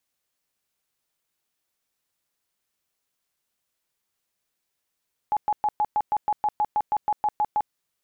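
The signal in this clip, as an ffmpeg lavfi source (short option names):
-f lavfi -i "aevalsrc='0.112*sin(2*PI*842*mod(t,0.16))*lt(mod(t,0.16),40/842)':d=2.4:s=44100"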